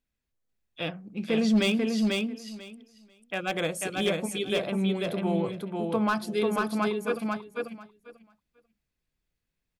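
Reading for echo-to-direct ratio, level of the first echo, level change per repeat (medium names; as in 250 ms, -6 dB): -3.0 dB, -3.0 dB, -16.0 dB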